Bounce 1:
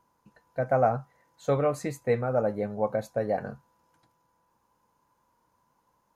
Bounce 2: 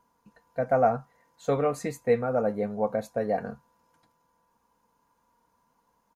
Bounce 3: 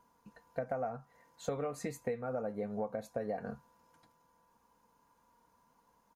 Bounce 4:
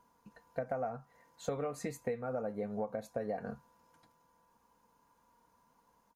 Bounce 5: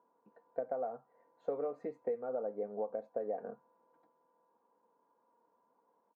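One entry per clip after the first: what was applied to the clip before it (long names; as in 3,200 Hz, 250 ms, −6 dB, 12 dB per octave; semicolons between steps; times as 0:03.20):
comb filter 4.3 ms, depth 40%
downward compressor 16 to 1, threshold −33 dBFS, peak gain reduction 17 dB
every ending faded ahead of time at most 430 dB per second
four-pole ladder band-pass 520 Hz, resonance 25%; level +10.5 dB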